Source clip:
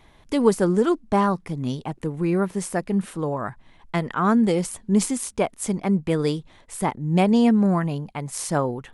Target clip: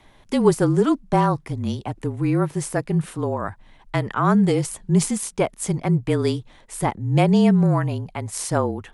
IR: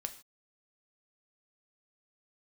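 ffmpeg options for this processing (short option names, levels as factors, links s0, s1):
-af "afreqshift=-32,volume=1.19"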